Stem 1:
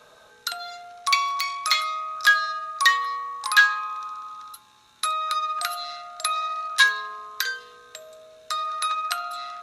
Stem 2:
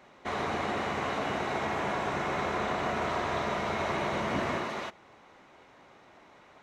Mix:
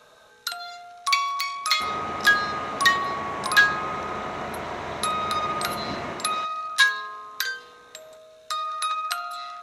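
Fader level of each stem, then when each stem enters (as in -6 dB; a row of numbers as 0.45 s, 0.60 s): -1.0 dB, -1.5 dB; 0.00 s, 1.55 s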